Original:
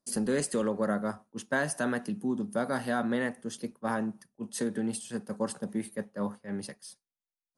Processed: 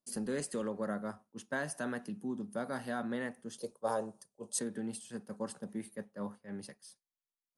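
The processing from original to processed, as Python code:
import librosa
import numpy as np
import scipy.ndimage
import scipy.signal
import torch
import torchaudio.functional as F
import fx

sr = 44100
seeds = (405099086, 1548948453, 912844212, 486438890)

y = fx.graphic_eq(x, sr, hz=(250, 500, 1000, 2000, 4000, 8000), db=(-9, 12, 4, -10, 5, 12), at=(3.58, 4.59))
y = F.gain(torch.from_numpy(y), -7.5).numpy()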